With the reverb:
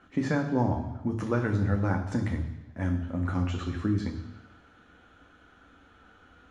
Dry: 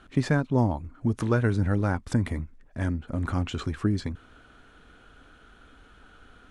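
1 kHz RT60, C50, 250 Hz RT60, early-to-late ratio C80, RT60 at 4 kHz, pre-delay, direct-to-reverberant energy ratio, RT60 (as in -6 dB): 1.1 s, 8.5 dB, 1.0 s, 10.5 dB, 1.1 s, 3 ms, 2.0 dB, 1.1 s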